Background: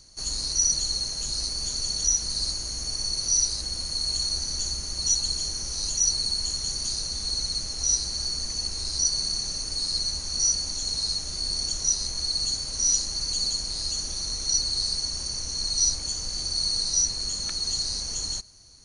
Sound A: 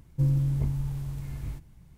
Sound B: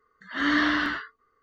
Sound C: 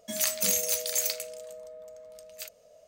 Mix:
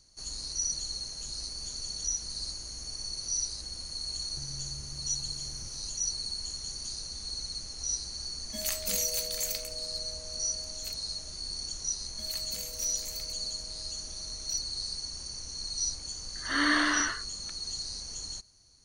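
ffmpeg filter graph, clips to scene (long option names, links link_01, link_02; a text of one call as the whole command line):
ffmpeg -i bed.wav -i cue0.wav -i cue1.wav -i cue2.wav -filter_complex "[3:a]asplit=2[link_01][link_02];[0:a]volume=-9dB[link_03];[1:a]acompressor=threshold=-37dB:ratio=6:attack=3.2:release=140:knee=1:detection=peak[link_04];[2:a]highpass=300,lowpass=5400[link_05];[link_04]atrim=end=1.97,asetpts=PTS-STARTPTS,volume=-8dB,afade=type=in:duration=0.004:curve=hsin,afade=type=out:start_time=1.966:duration=0.004:curve=hsin,adelay=4190[link_06];[link_01]atrim=end=2.87,asetpts=PTS-STARTPTS,volume=-5.5dB,afade=type=in:duration=0.004:curve=hsin,afade=type=out:start_time=2.866:duration=0.004:curve=hsin,adelay=8450[link_07];[link_02]atrim=end=2.87,asetpts=PTS-STARTPTS,volume=-15dB,afade=type=in:duration=0.004:curve=hsin,afade=type=out:start_time=2.866:duration=0.004:curve=hsin,adelay=12100[link_08];[link_05]atrim=end=1.42,asetpts=PTS-STARTPTS,volume=-2dB,afade=type=in:duration=0.004:curve=hsin,afade=type=out:start_time=1.416:duration=0.004:curve=hsin,adelay=16140[link_09];[link_03][link_06][link_07][link_08][link_09]amix=inputs=5:normalize=0" out.wav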